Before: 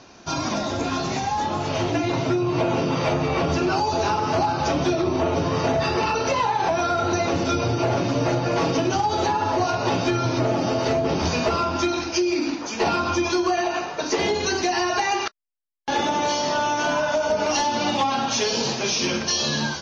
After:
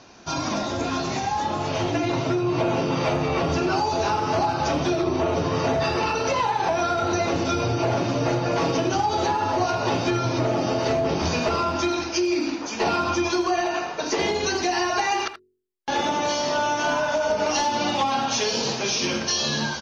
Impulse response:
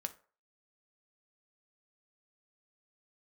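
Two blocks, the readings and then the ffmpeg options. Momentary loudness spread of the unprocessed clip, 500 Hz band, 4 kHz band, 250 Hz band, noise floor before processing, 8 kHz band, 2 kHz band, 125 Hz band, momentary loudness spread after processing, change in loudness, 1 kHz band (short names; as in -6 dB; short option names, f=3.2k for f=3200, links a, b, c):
3 LU, -1.0 dB, -1.0 dB, -1.0 dB, -32 dBFS, n/a, -0.5 dB, -1.5 dB, 3 LU, -1.0 dB, -0.5 dB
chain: -filter_complex "[0:a]bandreject=f=45.94:t=h:w=4,bandreject=f=91.88:t=h:w=4,bandreject=f=137.82:t=h:w=4,bandreject=f=183.76:t=h:w=4,bandreject=f=229.7:t=h:w=4,bandreject=f=275.64:t=h:w=4,bandreject=f=321.58:t=h:w=4,bandreject=f=367.52:t=h:w=4,bandreject=f=413.46:t=h:w=4,bandreject=f=459.4:t=h:w=4,asplit=2[a][b];[b]adelay=80,highpass=300,lowpass=3.4k,asoftclip=type=hard:threshold=-20.5dB,volume=-10dB[c];[a][c]amix=inputs=2:normalize=0,volume=-1dB"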